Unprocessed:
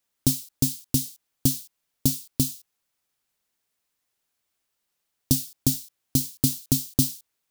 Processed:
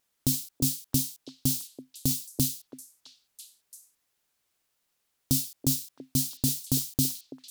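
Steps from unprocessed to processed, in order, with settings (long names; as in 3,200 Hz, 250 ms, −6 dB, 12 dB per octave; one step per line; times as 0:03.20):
pitch vibrato 3.2 Hz 14 cents
echo through a band-pass that steps 333 ms, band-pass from 480 Hz, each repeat 1.4 octaves, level −11 dB
brickwall limiter −14 dBFS, peak gain reduction 8.5 dB
level +2 dB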